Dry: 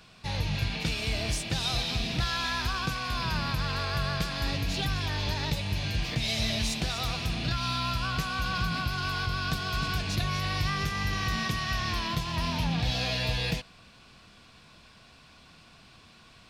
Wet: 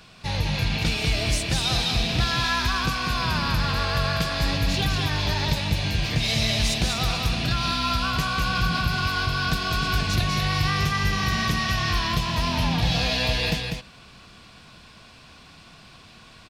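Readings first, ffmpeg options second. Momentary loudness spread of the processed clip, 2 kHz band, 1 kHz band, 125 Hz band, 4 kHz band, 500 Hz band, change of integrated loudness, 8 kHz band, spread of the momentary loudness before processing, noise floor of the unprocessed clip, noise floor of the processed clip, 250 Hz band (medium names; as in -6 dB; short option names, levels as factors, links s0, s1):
2 LU, +6.0 dB, +6.5 dB, +6.0 dB, +6.0 dB, +6.5 dB, +6.0 dB, +6.0 dB, 2 LU, -55 dBFS, -49 dBFS, +6.0 dB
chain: -af "aecho=1:1:196:0.562,volume=1.78"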